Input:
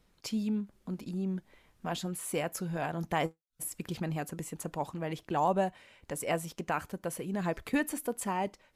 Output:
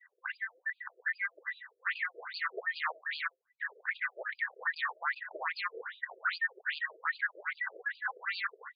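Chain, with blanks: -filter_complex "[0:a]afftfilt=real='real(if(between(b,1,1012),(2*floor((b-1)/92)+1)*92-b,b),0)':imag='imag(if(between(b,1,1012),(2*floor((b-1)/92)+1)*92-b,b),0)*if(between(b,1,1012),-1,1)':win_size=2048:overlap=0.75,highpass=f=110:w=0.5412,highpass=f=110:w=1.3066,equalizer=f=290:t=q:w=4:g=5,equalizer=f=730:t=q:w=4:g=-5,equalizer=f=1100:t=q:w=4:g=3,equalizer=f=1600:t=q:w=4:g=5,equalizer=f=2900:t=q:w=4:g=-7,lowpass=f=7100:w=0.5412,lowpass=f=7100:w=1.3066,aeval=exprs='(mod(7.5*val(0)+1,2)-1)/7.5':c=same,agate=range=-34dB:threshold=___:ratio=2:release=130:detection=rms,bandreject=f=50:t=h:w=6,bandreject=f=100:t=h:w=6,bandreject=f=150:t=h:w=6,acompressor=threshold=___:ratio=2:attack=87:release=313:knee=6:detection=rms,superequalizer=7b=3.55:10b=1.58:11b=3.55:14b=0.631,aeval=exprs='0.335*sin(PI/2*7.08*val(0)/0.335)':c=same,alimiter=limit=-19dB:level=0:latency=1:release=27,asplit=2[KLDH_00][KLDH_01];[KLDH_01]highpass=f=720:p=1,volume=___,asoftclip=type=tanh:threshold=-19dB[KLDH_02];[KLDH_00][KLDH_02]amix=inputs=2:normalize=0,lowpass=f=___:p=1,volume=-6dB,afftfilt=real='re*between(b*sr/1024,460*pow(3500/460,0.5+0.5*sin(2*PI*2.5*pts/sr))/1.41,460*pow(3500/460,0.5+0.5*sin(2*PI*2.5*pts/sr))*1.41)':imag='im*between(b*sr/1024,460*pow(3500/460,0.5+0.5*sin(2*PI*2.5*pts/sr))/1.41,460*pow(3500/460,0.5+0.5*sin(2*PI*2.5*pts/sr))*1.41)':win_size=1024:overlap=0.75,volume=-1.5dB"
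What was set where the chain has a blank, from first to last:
-53dB, -33dB, 6dB, 1300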